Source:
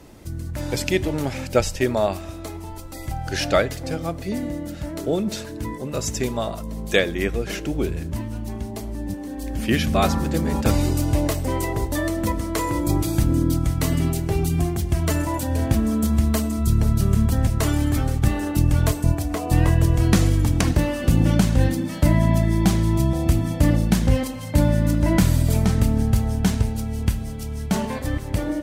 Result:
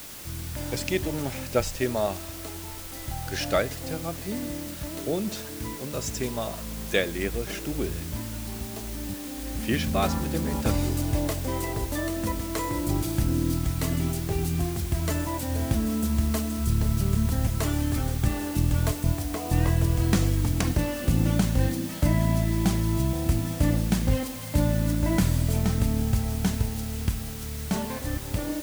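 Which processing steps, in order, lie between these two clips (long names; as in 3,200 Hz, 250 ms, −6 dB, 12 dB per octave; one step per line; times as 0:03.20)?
bit-depth reduction 6 bits, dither triangular
level −5.5 dB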